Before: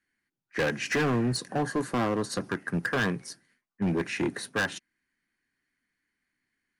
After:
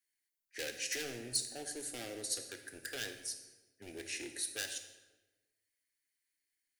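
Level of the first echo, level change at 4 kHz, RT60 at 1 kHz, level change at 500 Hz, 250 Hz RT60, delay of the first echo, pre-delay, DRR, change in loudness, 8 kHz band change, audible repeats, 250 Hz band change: none, -3.0 dB, 1.1 s, -15.5 dB, 1.3 s, none, 21 ms, 7.0 dB, -10.5 dB, +2.5 dB, none, -21.0 dB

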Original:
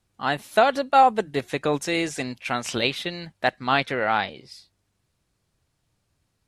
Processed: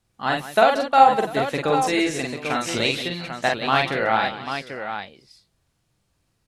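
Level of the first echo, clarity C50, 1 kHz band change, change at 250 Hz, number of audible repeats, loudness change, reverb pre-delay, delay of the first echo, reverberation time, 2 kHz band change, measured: -3.0 dB, none, +3.0 dB, +2.5 dB, 4, +2.0 dB, none, 45 ms, none, +2.5 dB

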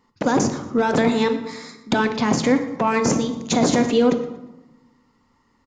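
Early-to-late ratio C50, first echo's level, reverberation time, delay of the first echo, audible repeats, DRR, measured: 10.0 dB, -17.5 dB, 1.0 s, 0.118 s, 2, 7.0 dB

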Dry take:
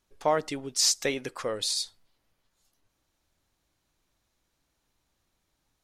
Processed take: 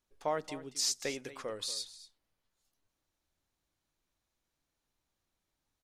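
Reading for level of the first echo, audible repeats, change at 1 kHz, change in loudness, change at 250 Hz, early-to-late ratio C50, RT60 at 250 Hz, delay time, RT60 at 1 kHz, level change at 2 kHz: -15.5 dB, 1, -8.5 dB, -8.5 dB, -8.5 dB, none, none, 0.234 s, none, -8.5 dB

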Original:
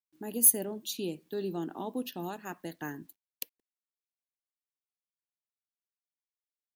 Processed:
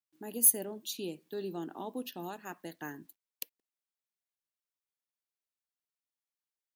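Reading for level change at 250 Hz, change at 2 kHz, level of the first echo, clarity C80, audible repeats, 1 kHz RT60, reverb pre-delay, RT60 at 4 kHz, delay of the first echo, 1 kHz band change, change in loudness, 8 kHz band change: -4.5 dB, -2.0 dB, none, none, none, none, none, none, none, -2.5 dB, -1.5 dB, -2.0 dB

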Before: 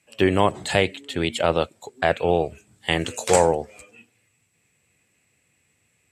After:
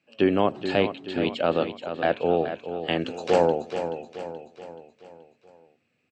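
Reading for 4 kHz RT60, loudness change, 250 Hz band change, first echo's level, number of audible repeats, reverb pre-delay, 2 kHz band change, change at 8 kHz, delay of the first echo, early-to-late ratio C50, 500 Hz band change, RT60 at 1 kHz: none, -3.0 dB, 0.0 dB, -9.5 dB, 5, none, -5.5 dB, under -20 dB, 0.428 s, none, -1.5 dB, none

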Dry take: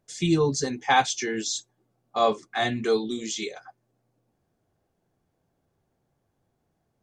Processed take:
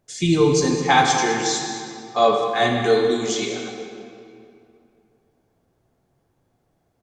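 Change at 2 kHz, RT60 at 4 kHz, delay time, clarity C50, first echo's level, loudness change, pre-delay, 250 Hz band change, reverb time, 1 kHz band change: +6.0 dB, 1.7 s, 0.205 s, 2.5 dB, -13.5 dB, +6.0 dB, 7 ms, +6.0 dB, 2.6 s, +6.5 dB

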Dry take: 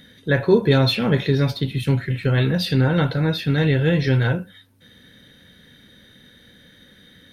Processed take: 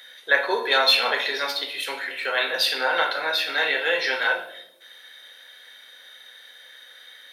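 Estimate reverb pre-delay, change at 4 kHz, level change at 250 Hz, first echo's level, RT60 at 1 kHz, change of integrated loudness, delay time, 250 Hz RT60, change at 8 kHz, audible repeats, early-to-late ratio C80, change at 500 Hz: 8 ms, +5.5 dB, -21.5 dB, none, 0.60 s, -2.5 dB, none, 1.3 s, n/a, none, 14.0 dB, -5.5 dB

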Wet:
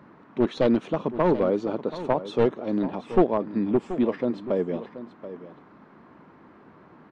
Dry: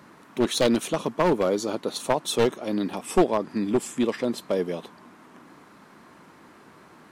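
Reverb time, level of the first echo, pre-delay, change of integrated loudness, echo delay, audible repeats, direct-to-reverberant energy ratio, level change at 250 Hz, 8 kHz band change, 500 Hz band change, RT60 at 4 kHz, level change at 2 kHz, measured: none, -13.5 dB, none, 0.0 dB, 0.73 s, 1, none, +1.0 dB, under -20 dB, +0.5 dB, none, -5.0 dB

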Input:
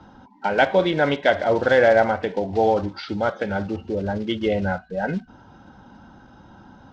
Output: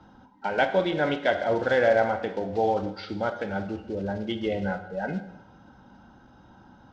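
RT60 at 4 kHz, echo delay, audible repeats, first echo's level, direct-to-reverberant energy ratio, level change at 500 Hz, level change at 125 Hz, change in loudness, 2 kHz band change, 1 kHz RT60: 0.90 s, none, none, none, 8.5 dB, -5.5 dB, -5.5 dB, -5.5 dB, -5.5 dB, 0.95 s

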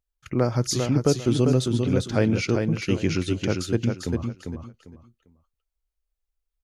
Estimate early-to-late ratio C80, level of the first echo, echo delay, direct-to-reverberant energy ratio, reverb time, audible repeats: none, -5.0 dB, 0.398 s, none, none, 3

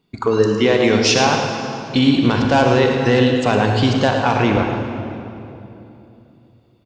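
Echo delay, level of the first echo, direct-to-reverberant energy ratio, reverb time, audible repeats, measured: 0.11 s, -8.0 dB, 2.0 dB, 3.0 s, 1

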